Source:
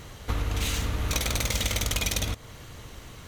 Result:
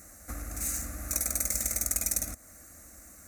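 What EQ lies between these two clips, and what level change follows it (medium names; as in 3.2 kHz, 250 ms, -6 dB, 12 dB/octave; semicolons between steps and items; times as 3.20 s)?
high-pass 45 Hz; resonant high shelf 5.6 kHz +11.5 dB, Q 1.5; static phaser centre 640 Hz, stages 8; -6.5 dB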